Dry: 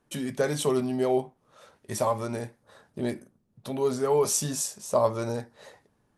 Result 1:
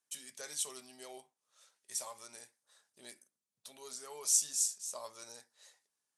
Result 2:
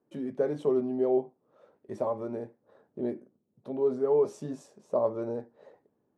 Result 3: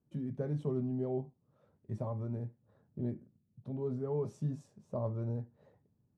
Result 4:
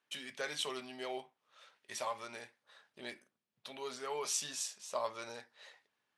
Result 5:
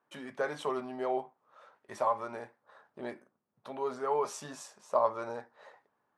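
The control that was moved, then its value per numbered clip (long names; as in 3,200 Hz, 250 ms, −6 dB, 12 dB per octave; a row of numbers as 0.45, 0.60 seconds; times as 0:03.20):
resonant band-pass, frequency: 7,600, 380, 120, 2,900, 1,100 Hertz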